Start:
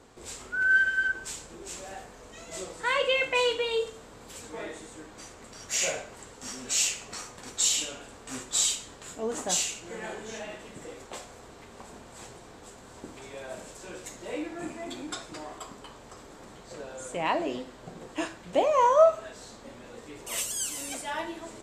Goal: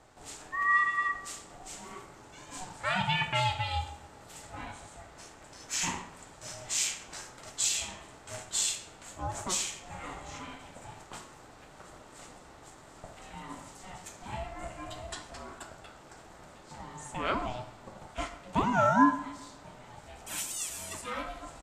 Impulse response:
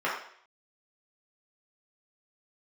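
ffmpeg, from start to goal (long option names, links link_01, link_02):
-filter_complex "[0:a]aeval=exprs='val(0)*sin(2*PI*370*n/s)':channel_layout=same,asplit=2[link_01][link_02];[link_02]adelay=134,lowpass=frequency=2000:poles=1,volume=-16dB,asplit=2[link_03][link_04];[link_04]adelay=134,lowpass=frequency=2000:poles=1,volume=0.46,asplit=2[link_05][link_06];[link_06]adelay=134,lowpass=frequency=2000:poles=1,volume=0.46,asplit=2[link_07][link_08];[link_08]adelay=134,lowpass=frequency=2000:poles=1,volume=0.46[link_09];[link_01][link_03][link_05][link_07][link_09]amix=inputs=5:normalize=0,asplit=2[link_10][link_11];[1:a]atrim=start_sample=2205[link_12];[link_11][link_12]afir=irnorm=-1:irlink=0,volume=-22.5dB[link_13];[link_10][link_13]amix=inputs=2:normalize=0,volume=-1.5dB"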